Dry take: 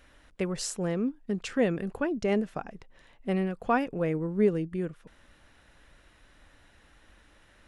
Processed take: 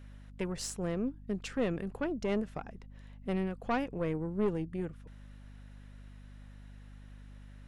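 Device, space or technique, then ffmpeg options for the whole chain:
valve amplifier with mains hum: -af "aeval=exprs='(tanh(11.2*val(0)+0.45)-tanh(0.45))/11.2':c=same,aeval=exprs='val(0)+0.00501*(sin(2*PI*50*n/s)+sin(2*PI*2*50*n/s)/2+sin(2*PI*3*50*n/s)/3+sin(2*PI*4*50*n/s)/4+sin(2*PI*5*50*n/s)/5)':c=same,volume=-3dB"

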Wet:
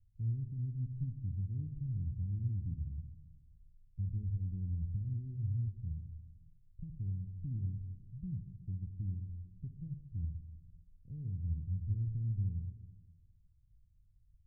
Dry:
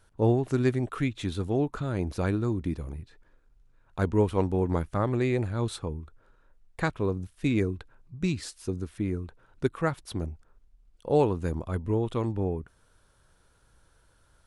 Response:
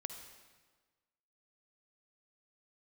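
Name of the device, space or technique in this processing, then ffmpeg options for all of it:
club heard from the street: -filter_complex "[0:a]alimiter=limit=-20dB:level=0:latency=1,lowpass=f=140:w=0.5412,lowpass=f=140:w=1.3066[a];[1:a]atrim=start_sample=2205[b];[a][b]afir=irnorm=-1:irlink=0"

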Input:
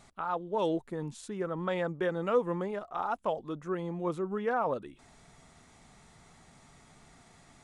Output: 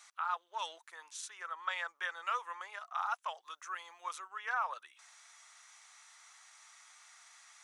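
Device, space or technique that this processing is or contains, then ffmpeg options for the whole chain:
headphones lying on a table: -filter_complex "[0:a]highpass=f=1.1k:w=0.5412,highpass=f=1.1k:w=1.3066,equalizer=f=6k:t=o:w=0.21:g=8,asettb=1/sr,asplit=3[a][b][c];[a]atrim=end=3.434[d];[b]atrim=start=3.43:end=4.28,asetpts=PTS-STARTPTS,afade=t=in:d=0.004:c=qsin,afade=t=out:st=0.846:d=0.004:c=qsin,highshelf=f=3.8k:g=5.5[e];[c]atrim=start=4.276[f];[d][e]acrossfade=d=0.004:c1=hsin:c2=qsin[g];[g][f]acrossfade=d=0.004:c1=qsin:c2=hsin,volume=2.5dB"

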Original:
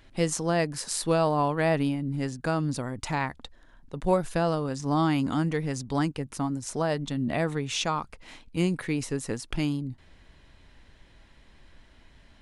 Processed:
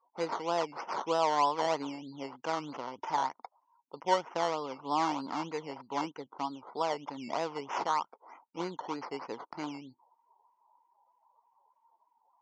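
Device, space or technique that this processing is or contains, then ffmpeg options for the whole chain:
circuit-bent sampling toy: -filter_complex "[0:a]asettb=1/sr,asplit=3[a][b][c];[a]atrim=end=4.734[d];[b]atrim=start=4.73:end=6.79,asetpts=PTS-STARTPTS,afade=t=in:d=0.004:c=qsin,afade=t=out:st=2.056:d=0.004:c=qsin,lowpass=f=5.3k:w=0.5412,lowpass=f=5.3k:w=1.3066[e];[c]atrim=start=6.786[f];[d][e]acrossfade=d=0.004:c1=hsin:c2=qsin[g];[g][f]acrossfade=d=0.004:c1=qsin:c2=hsin,acrusher=samples=14:mix=1:aa=0.000001:lfo=1:lforange=8.4:lforate=3.2,highpass=470,equalizer=f=620:t=q:w=4:g=-3,equalizer=f=930:t=q:w=4:g=9,equalizer=f=1.7k:t=q:w=4:g=-10,equalizer=f=2.5k:t=q:w=4:g=-6,equalizer=f=3.8k:t=q:w=4:g=-9,lowpass=f=5.7k:w=0.5412,lowpass=f=5.7k:w=1.3066,afftdn=nr=27:nf=-54,volume=-2.5dB"

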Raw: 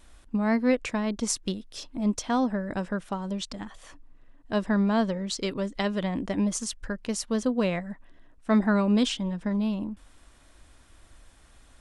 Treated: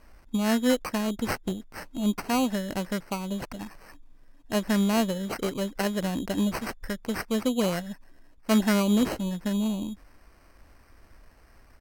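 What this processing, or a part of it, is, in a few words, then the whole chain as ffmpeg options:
crushed at another speed: -af "asetrate=55125,aresample=44100,acrusher=samples=10:mix=1:aa=0.000001,asetrate=35280,aresample=44100"

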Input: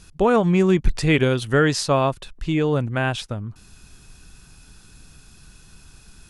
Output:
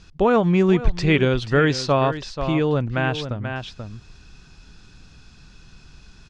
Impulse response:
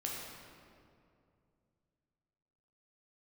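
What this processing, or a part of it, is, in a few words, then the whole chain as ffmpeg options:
ducked delay: -filter_complex "[0:a]asplit=3[a][b][c];[b]adelay=485,volume=-6dB[d];[c]apad=whole_len=299001[e];[d][e]sidechaincompress=threshold=-20dB:ratio=10:attack=16:release=1010[f];[a][f]amix=inputs=2:normalize=0,lowpass=f=5.8k:w=0.5412,lowpass=f=5.8k:w=1.3066"

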